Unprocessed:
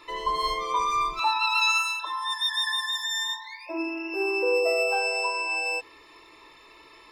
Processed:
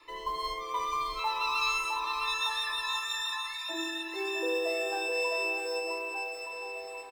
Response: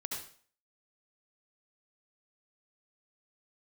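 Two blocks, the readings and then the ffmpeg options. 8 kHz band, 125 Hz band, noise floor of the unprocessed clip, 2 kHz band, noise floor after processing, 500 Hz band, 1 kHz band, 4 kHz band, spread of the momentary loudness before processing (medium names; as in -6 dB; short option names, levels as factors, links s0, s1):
-5.0 dB, no reading, -52 dBFS, -5.5 dB, -42 dBFS, -5.5 dB, -5.5 dB, -5.5 dB, 9 LU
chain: -filter_complex "[0:a]adynamicequalizer=threshold=0.00316:dfrequency=190:dqfactor=1.6:tfrequency=190:tqfactor=1.6:attack=5:release=100:ratio=0.375:range=2.5:mode=cutabove:tftype=bell,acrusher=bits=7:mode=log:mix=0:aa=0.000001,asplit=2[s0][s1];[s1]aecho=0:1:660|1221|1698|2103|2448:0.631|0.398|0.251|0.158|0.1[s2];[s0][s2]amix=inputs=2:normalize=0,volume=0.422"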